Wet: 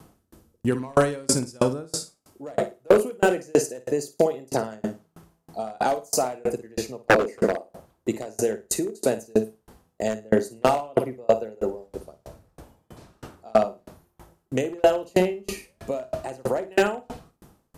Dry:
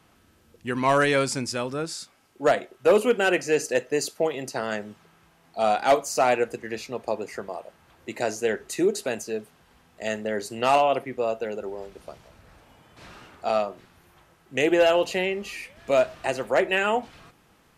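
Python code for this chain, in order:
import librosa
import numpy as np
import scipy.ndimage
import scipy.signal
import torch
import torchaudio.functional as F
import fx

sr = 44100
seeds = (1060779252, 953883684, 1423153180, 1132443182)

p1 = fx.peak_eq(x, sr, hz=2400.0, db=-14.0, octaves=2.3)
p2 = fx.over_compress(p1, sr, threshold_db=-29.0, ratio=-1.0)
p3 = p1 + (p2 * librosa.db_to_amplitude(0.0))
p4 = fx.graphic_eq(p3, sr, hz=(125, 250, 500, 2000, 4000, 8000), db=(-7, 10, 9, 11, 4, 5), at=(7.09, 7.57), fade=0.02)
p5 = fx.room_flutter(p4, sr, wall_m=9.4, rt60_s=0.45)
p6 = 10.0 ** (-12.5 / 20.0) * (np.abs((p5 / 10.0 ** (-12.5 / 20.0) + 3.0) % 4.0 - 2.0) - 1.0)
p7 = fx.tremolo_decay(p6, sr, direction='decaying', hz=3.1, depth_db=35)
y = p7 * librosa.db_to_amplitude(7.5)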